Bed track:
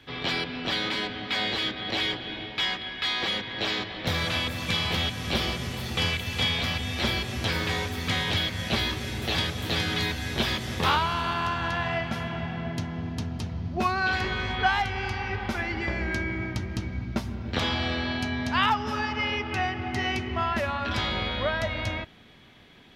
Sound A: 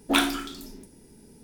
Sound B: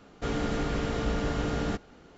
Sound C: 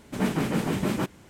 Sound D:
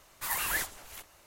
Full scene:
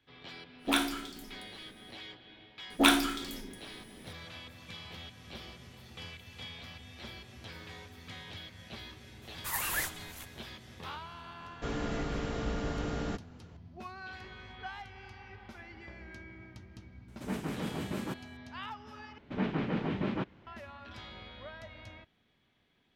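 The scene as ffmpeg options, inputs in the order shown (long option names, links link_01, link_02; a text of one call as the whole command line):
ffmpeg -i bed.wav -i cue0.wav -i cue1.wav -i cue2.wav -i cue3.wav -filter_complex "[1:a]asplit=2[link_01][link_02];[3:a]asplit=2[link_03][link_04];[0:a]volume=-19.5dB[link_05];[link_04]lowpass=frequency=3700:width=0.5412,lowpass=frequency=3700:width=1.3066[link_06];[link_05]asplit=2[link_07][link_08];[link_07]atrim=end=19.184[link_09];[link_06]atrim=end=1.29,asetpts=PTS-STARTPTS,volume=-6.5dB[link_10];[link_08]atrim=start=20.466[link_11];[link_01]atrim=end=1.43,asetpts=PTS-STARTPTS,volume=-6.5dB,afade=type=in:duration=0.1,afade=type=out:start_time=1.33:duration=0.1,adelay=580[link_12];[link_02]atrim=end=1.43,asetpts=PTS-STARTPTS,volume=-1dB,afade=type=in:duration=0.004:curve=hsin,afade=type=out:start_time=1.426:duration=0.004:curve=hsin,adelay=2700[link_13];[4:a]atrim=end=1.26,asetpts=PTS-STARTPTS,volume=-2dB,afade=type=in:duration=0.004:curve=hsin,afade=type=out:start_time=1.256:duration=0.004:curve=hsin,adelay=9230[link_14];[2:a]atrim=end=2.17,asetpts=PTS-STARTPTS,volume=-5.5dB,afade=type=in:duration=0.004:curve=hsin,afade=type=out:start_time=2.166:duration=0.004:curve=hsin,adelay=11400[link_15];[link_03]atrim=end=1.29,asetpts=PTS-STARTPTS,volume=-10.5dB,afade=type=in:duration=0.004:curve=hsin,afade=type=out:start_time=1.286:duration=0.004:curve=hsin,adelay=17080[link_16];[link_09][link_10]acrossfade=duration=0.004:curve1=hsin:curve2=hsin[link_17];[link_17][link_11]acrossfade=duration=0.004:curve1=hsin:curve2=hsin[link_18];[link_18][link_12][link_13][link_14][link_15][link_16]amix=inputs=6:normalize=0" out.wav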